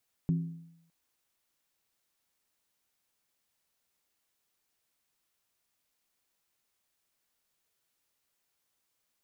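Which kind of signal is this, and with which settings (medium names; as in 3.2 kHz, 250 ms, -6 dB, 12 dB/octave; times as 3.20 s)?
skin hit length 0.61 s, lowest mode 166 Hz, decay 0.79 s, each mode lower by 11 dB, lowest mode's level -22.5 dB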